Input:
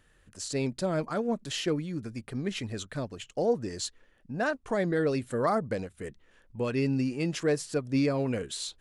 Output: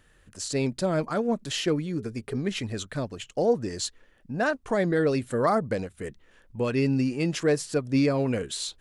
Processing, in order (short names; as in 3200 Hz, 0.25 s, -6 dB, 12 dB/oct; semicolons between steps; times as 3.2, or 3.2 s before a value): 1.86–2.38 bell 420 Hz +14 dB 0.23 oct; gain +3.5 dB